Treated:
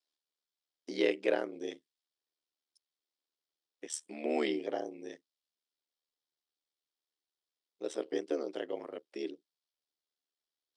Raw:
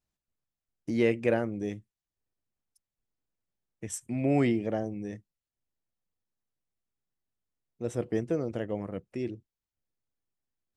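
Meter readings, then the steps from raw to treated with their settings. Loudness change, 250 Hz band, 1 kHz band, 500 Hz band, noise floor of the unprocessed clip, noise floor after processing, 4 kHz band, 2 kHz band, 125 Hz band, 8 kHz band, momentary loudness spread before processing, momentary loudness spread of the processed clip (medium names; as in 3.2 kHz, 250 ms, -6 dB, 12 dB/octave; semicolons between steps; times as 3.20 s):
-5.5 dB, -8.5 dB, -3.5 dB, -3.5 dB, under -85 dBFS, under -85 dBFS, +4.5 dB, -3.0 dB, under -25 dB, -2.5 dB, 16 LU, 18 LU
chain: elliptic band-pass 340–9600 Hz, stop band 40 dB; ring modulator 38 Hz; high-order bell 4.1 kHz +10 dB 1 oct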